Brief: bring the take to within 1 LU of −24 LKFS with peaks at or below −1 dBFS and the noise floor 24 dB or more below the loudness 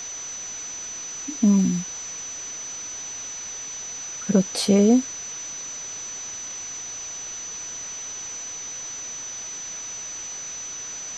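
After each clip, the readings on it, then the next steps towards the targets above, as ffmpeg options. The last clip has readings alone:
interfering tone 6,000 Hz; level of the tone −32 dBFS; background noise floor −35 dBFS; target noise floor −51 dBFS; integrated loudness −26.5 LKFS; sample peak −6.0 dBFS; target loudness −24.0 LKFS
→ -af "bandreject=frequency=6000:width=30"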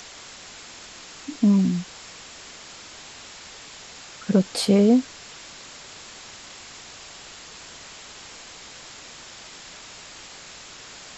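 interfering tone none found; background noise floor −43 dBFS; target noise floor −45 dBFS
→ -af "afftdn=noise_reduction=6:noise_floor=-43"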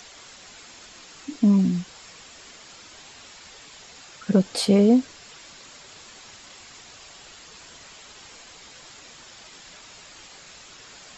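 background noise floor −47 dBFS; integrated loudness −21.0 LKFS; sample peak −6.5 dBFS; target loudness −24.0 LKFS
→ -af "volume=-3dB"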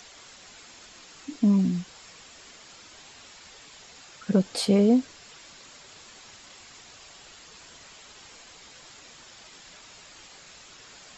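integrated loudness −24.0 LKFS; sample peak −9.5 dBFS; background noise floor −50 dBFS

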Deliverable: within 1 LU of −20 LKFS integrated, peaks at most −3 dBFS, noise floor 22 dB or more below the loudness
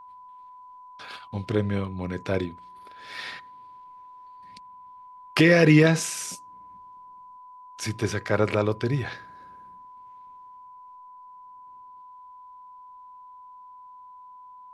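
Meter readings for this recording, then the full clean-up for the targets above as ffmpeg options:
interfering tone 1,000 Hz; level of the tone −44 dBFS; integrated loudness −24.0 LKFS; sample peak −5.0 dBFS; target loudness −20.0 LKFS
→ -af "bandreject=frequency=1000:width=30"
-af "volume=4dB,alimiter=limit=-3dB:level=0:latency=1"

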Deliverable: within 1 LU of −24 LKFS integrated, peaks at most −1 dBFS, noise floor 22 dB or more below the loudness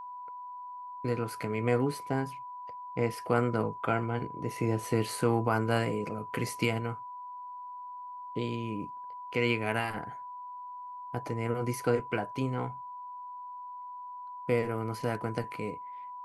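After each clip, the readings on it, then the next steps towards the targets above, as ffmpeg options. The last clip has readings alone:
interfering tone 990 Hz; level of the tone −40 dBFS; integrated loudness −33.5 LKFS; sample peak −13.0 dBFS; target loudness −24.0 LKFS
→ -af "bandreject=frequency=990:width=30"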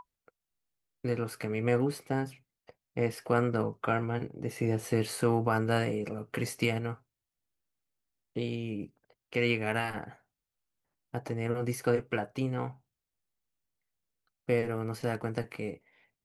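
interfering tone none found; integrated loudness −32.5 LKFS; sample peak −12.5 dBFS; target loudness −24.0 LKFS
→ -af "volume=8.5dB"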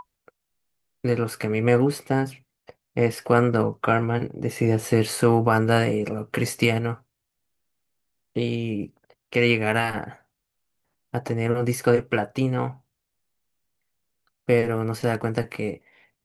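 integrated loudness −24.0 LKFS; sample peak −4.0 dBFS; background noise floor −80 dBFS

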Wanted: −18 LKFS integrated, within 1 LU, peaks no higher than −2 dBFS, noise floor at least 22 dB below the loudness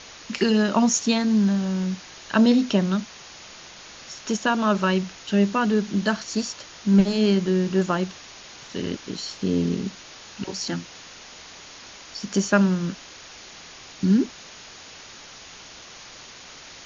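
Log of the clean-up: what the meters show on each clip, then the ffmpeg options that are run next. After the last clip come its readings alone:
background noise floor −44 dBFS; target noise floor −45 dBFS; integrated loudness −23.0 LKFS; sample peak −5.0 dBFS; target loudness −18.0 LKFS
→ -af "afftdn=noise_reduction=6:noise_floor=-44"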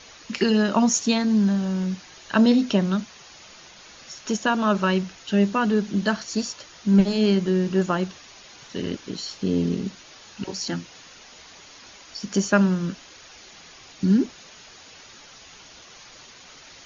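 background noise floor −47 dBFS; integrated loudness −23.0 LKFS; sample peak −5.0 dBFS; target loudness −18.0 LKFS
→ -af "volume=5dB,alimiter=limit=-2dB:level=0:latency=1"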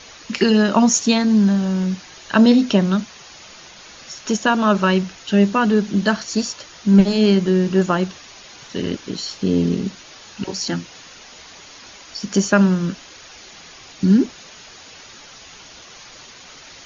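integrated loudness −18.0 LKFS; sample peak −2.0 dBFS; background noise floor −42 dBFS

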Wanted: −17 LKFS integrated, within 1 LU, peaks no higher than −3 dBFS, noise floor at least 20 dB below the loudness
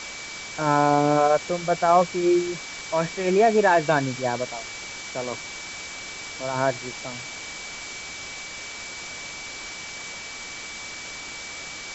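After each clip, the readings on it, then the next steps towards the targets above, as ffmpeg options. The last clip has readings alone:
interfering tone 2,300 Hz; level of the tone −38 dBFS; background noise floor −37 dBFS; target noise floor −46 dBFS; integrated loudness −25.5 LKFS; sample peak −6.0 dBFS; target loudness −17.0 LKFS
→ -af "bandreject=frequency=2300:width=30"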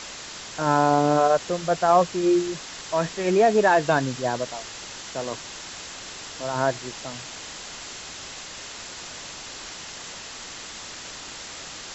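interfering tone none found; background noise floor −39 dBFS; target noise floor −45 dBFS
→ -af "afftdn=noise_reduction=6:noise_floor=-39"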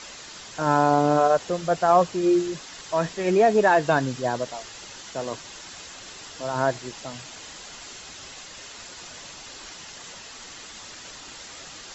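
background noise floor −42 dBFS; target noise floor −43 dBFS
→ -af "afftdn=noise_reduction=6:noise_floor=-42"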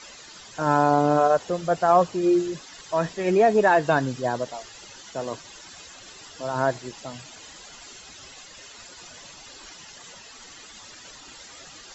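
background noise floor −46 dBFS; integrated loudness −22.5 LKFS; sample peak −6.5 dBFS; target loudness −17.0 LKFS
→ -af "volume=5.5dB,alimiter=limit=-3dB:level=0:latency=1"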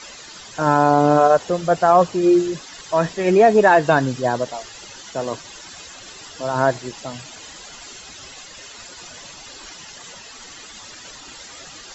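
integrated loudness −17.5 LKFS; sample peak −3.0 dBFS; background noise floor −40 dBFS

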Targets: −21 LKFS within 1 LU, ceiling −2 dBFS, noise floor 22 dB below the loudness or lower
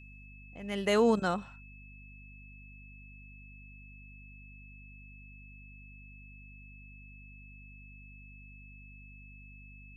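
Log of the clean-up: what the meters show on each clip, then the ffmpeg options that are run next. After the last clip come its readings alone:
mains hum 50 Hz; hum harmonics up to 250 Hz; level of the hum −50 dBFS; interfering tone 2,600 Hz; level of the tone −54 dBFS; integrated loudness −29.5 LKFS; sample peak −16.5 dBFS; target loudness −21.0 LKFS
→ -af "bandreject=frequency=50:width_type=h:width=6,bandreject=frequency=100:width_type=h:width=6,bandreject=frequency=150:width_type=h:width=6,bandreject=frequency=200:width_type=h:width=6,bandreject=frequency=250:width_type=h:width=6"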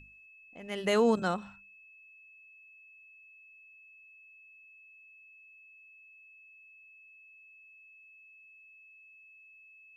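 mains hum none found; interfering tone 2,600 Hz; level of the tone −54 dBFS
→ -af "bandreject=frequency=2600:width=30"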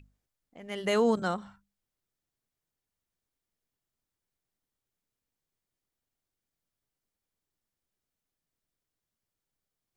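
interfering tone none found; integrated loudness −29.0 LKFS; sample peak −16.5 dBFS; target loudness −21.0 LKFS
→ -af "volume=8dB"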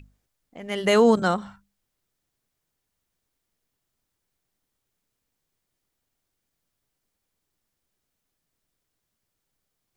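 integrated loudness −21.0 LKFS; sample peak −8.5 dBFS; background noise floor −81 dBFS

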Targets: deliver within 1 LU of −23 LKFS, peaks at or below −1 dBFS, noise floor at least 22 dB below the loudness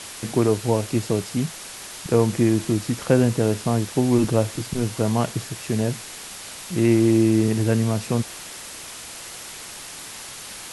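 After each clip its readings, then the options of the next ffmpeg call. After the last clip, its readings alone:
background noise floor −38 dBFS; target noise floor −44 dBFS; integrated loudness −22.0 LKFS; sample peak −4.0 dBFS; target loudness −23.0 LKFS
→ -af "afftdn=noise_reduction=6:noise_floor=-38"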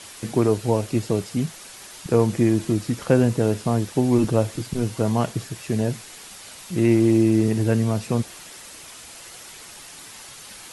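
background noise floor −42 dBFS; target noise floor −44 dBFS
→ -af "afftdn=noise_reduction=6:noise_floor=-42"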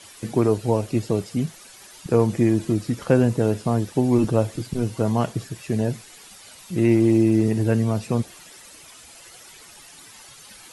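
background noise floor −46 dBFS; integrated loudness −22.0 LKFS; sample peak −4.5 dBFS; target loudness −23.0 LKFS
→ -af "volume=-1dB"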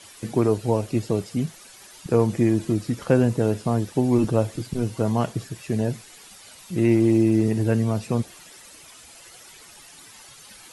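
integrated loudness −23.0 LKFS; sample peak −5.5 dBFS; background noise floor −47 dBFS

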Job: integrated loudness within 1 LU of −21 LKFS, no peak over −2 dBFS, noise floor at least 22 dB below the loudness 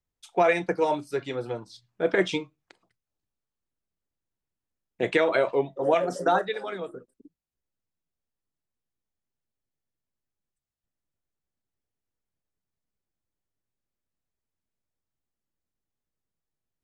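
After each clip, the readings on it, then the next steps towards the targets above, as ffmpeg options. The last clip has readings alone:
integrated loudness −26.0 LKFS; sample peak −10.0 dBFS; target loudness −21.0 LKFS
→ -af "volume=5dB"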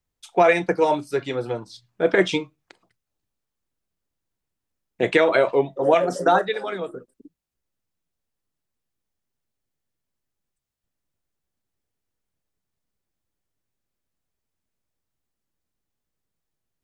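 integrated loudness −21.5 LKFS; sample peak −5.0 dBFS; background noise floor −83 dBFS

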